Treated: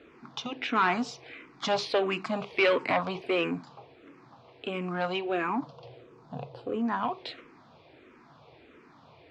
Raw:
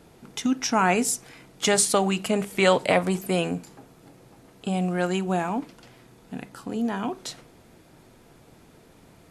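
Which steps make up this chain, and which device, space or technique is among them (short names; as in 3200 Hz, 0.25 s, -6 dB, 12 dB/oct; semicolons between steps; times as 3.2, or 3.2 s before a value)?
5.6–6.75 ten-band EQ 125 Hz +11 dB, 250 Hz -8 dB, 500 Hz +9 dB, 2000 Hz -11 dB; barber-pole phaser into a guitar amplifier (endless phaser -1.5 Hz; soft clip -21 dBFS, distortion -12 dB; speaker cabinet 110–4300 Hz, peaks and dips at 110 Hz -4 dB, 190 Hz -10 dB, 1100 Hz +7 dB, 2400 Hz +4 dB); gain +2 dB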